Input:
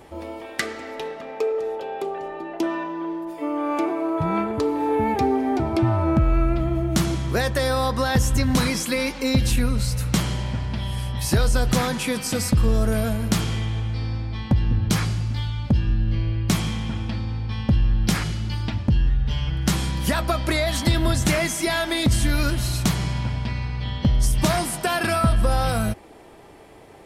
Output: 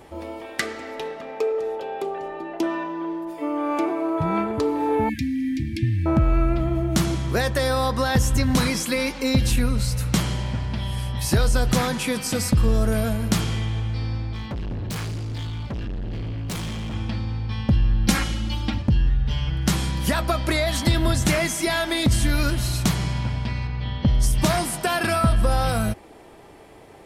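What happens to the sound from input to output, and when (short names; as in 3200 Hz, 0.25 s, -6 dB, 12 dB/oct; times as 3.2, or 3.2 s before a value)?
5.09–6.06 brick-wall FIR band-stop 320–1600 Hz
14.33–16.94 hard clip -27 dBFS
18.07–18.82 comb 3.7 ms, depth 95%
23.67–24.08 air absorption 110 m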